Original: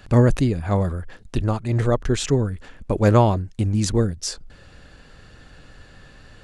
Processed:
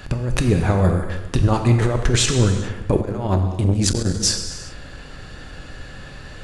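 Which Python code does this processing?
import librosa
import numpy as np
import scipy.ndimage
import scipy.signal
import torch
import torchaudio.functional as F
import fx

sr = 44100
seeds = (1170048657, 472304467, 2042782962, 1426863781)

y = fx.over_compress(x, sr, threshold_db=-21.0, ratio=-0.5)
y = fx.rev_gated(y, sr, seeds[0], gate_ms=440, shape='falling', drr_db=4.5)
y = fx.transformer_sat(y, sr, knee_hz=260.0, at=(3.01, 4.2))
y = y * librosa.db_to_amplitude(5.0)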